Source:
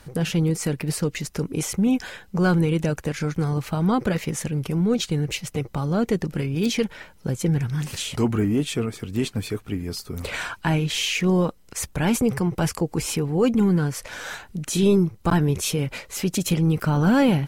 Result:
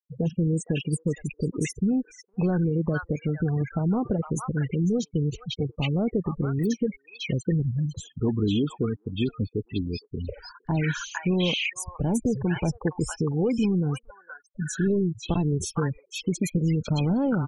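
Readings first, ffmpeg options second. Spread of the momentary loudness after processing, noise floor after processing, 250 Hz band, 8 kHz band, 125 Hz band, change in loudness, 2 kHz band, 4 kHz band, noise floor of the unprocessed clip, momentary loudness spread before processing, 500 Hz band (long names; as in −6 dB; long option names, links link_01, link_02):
7 LU, −64 dBFS, −3.5 dB, −7.5 dB, −2.5 dB, −3.5 dB, −5.0 dB, −5.0 dB, −50 dBFS, 10 LU, −4.0 dB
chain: -filter_complex "[0:a]afftfilt=real='re*gte(hypot(re,im),0.0708)':imag='im*gte(hypot(re,im),0.0708)':win_size=1024:overlap=0.75,acompressor=threshold=-20dB:ratio=8,acrossover=split=970|4700[link_01][link_02][link_03];[link_01]adelay=40[link_04];[link_02]adelay=500[link_05];[link_04][link_05][link_03]amix=inputs=3:normalize=0"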